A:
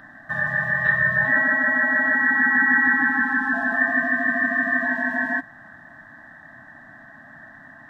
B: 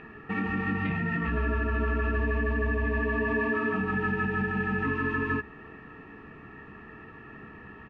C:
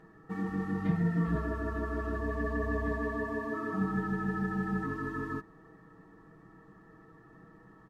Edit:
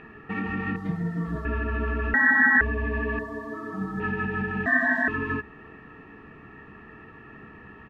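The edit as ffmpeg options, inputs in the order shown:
-filter_complex "[2:a]asplit=2[s0][s1];[0:a]asplit=2[s2][s3];[1:a]asplit=5[s4][s5][s6][s7][s8];[s4]atrim=end=0.762[s9];[s0]atrim=start=0.758:end=1.452[s10];[s5]atrim=start=1.448:end=2.142[s11];[s2]atrim=start=2.138:end=2.612[s12];[s6]atrim=start=2.608:end=3.192[s13];[s1]atrim=start=3.188:end=4.002[s14];[s7]atrim=start=3.998:end=4.662[s15];[s3]atrim=start=4.658:end=5.082[s16];[s8]atrim=start=5.078[s17];[s9][s10]acrossfade=d=0.004:c1=hsin:c2=hsin[s18];[s18][s11]acrossfade=d=0.004:c1=hsin:c2=hsin[s19];[s19][s12]acrossfade=d=0.004:c1=hsin:c2=hsin[s20];[s20][s13]acrossfade=d=0.004:c1=hsin:c2=hsin[s21];[s21][s14]acrossfade=d=0.004:c1=hsin:c2=hsin[s22];[s22][s15]acrossfade=d=0.004:c1=hsin:c2=hsin[s23];[s23][s16]acrossfade=d=0.004:c1=hsin:c2=hsin[s24];[s24][s17]acrossfade=d=0.004:c1=hsin:c2=hsin"

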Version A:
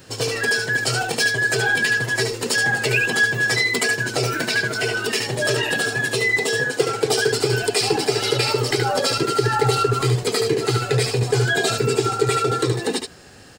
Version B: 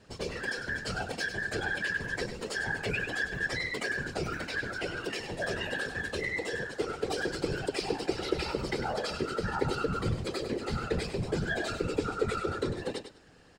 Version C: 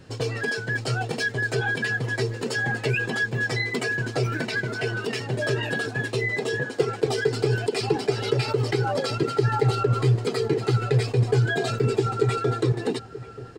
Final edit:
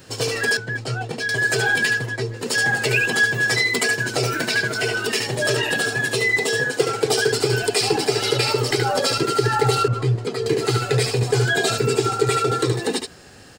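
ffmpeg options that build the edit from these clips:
-filter_complex "[2:a]asplit=3[s0][s1][s2];[0:a]asplit=4[s3][s4][s5][s6];[s3]atrim=end=0.572[s7];[s0]atrim=start=0.568:end=1.292[s8];[s4]atrim=start=1.288:end=2.13[s9];[s1]atrim=start=1.89:end=2.59[s10];[s5]atrim=start=2.35:end=9.882[s11];[s2]atrim=start=9.878:end=10.462[s12];[s6]atrim=start=10.458[s13];[s7][s8]acrossfade=d=0.004:c1=hsin:c2=hsin[s14];[s14][s9]acrossfade=d=0.004:c1=hsin:c2=hsin[s15];[s15][s10]acrossfade=d=0.24:c1=tri:c2=tri[s16];[s16][s11]acrossfade=d=0.24:c1=tri:c2=tri[s17];[s17][s12]acrossfade=d=0.004:c1=hsin:c2=hsin[s18];[s18][s13]acrossfade=d=0.004:c1=hsin:c2=hsin"

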